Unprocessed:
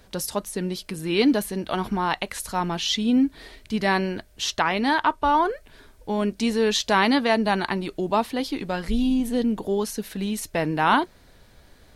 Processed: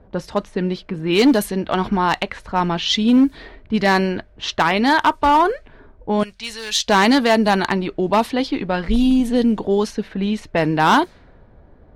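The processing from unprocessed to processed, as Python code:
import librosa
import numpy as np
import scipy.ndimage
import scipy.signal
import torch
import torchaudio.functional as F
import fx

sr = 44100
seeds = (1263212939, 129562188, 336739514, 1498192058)

y = fx.env_lowpass(x, sr, base_hz=790.0, full_db=-17.5)
y = fx.clip_asym(y, sr, top_db=-16.0, bottom_db=-13.5)
y = fx.tone_stack(y, sr, knobs='10-0-10', at=(6.23, 6.88))
y = F.gain(torch.from_numpy(y), 6.5).numpy()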